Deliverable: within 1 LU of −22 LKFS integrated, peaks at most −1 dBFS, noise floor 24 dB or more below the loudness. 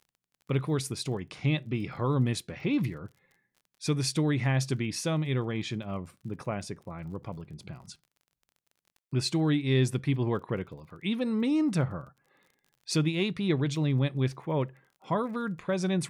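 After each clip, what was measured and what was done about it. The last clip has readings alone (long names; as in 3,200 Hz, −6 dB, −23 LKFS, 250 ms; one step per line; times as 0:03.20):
crackle rate 35 per second; integrated loudness −30.0 LKFS; sample peak −15.0 dBFS; target loudness −22.0 LKFS
→ click removal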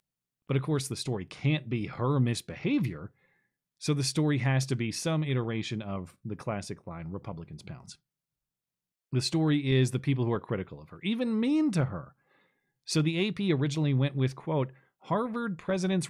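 crackle rate 0.062 per second; integrated loudness −30.0 LKFS; sample peak −15.0 dBFS; target loudness −22.0 LKFS
→ level +8 dB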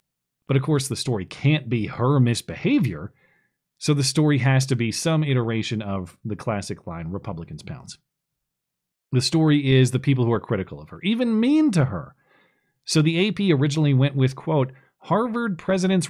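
integrated loudness −22.0 LKFS; sample peak −7.0 dBFS; background noise floor −82 dBFS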